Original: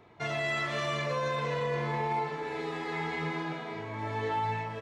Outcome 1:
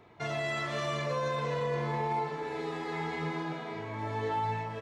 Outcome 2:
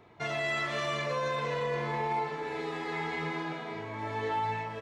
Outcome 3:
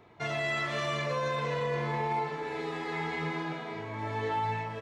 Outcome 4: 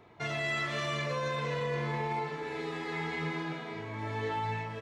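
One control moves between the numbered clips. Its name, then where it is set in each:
dynamic bell, frequency: 2.3 kHz, 120 Hz, 9.5 kHz, 770 Hz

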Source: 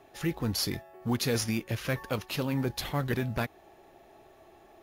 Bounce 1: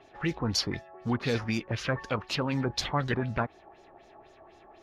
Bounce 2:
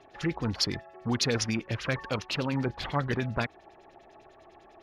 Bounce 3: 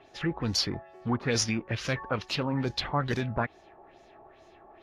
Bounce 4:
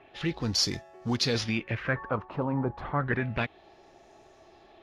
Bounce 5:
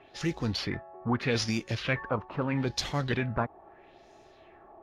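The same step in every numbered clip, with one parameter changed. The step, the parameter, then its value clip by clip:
LFO low-pass, rate: 4 Hz, 10 Hz, 2.3 Hz, 0.3 Hz, 0.78 Hz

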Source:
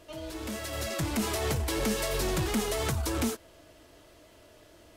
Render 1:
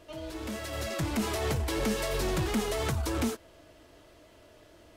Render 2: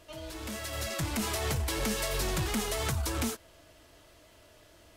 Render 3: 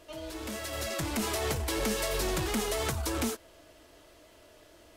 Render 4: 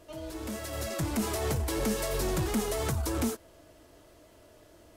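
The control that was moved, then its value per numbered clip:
peaking EQ, frequency: 14 kHz, 350 Hz, 130 Hz, 3 kHz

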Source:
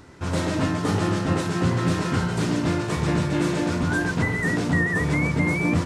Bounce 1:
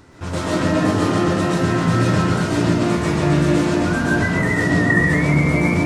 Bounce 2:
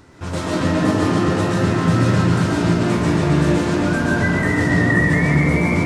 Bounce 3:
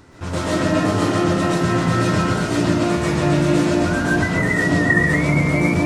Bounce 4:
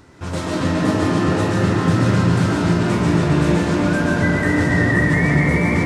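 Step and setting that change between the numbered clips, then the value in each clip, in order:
algorithmic reverb, RT60: 0.93 s, 2.4 s, 0.42 s, 5 s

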